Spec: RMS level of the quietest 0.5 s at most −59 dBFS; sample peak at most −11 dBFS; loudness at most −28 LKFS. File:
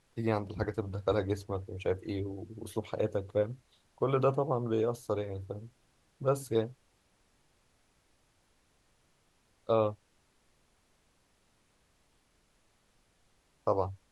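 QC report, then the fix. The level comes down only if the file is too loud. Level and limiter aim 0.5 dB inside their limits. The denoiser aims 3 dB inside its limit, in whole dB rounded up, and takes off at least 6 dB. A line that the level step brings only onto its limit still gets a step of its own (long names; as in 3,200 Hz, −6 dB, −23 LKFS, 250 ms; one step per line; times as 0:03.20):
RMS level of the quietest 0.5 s −70 dBFS: in spec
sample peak −14.5 dBFS: in spec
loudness −33.0 LKFS: in spec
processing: no processing needed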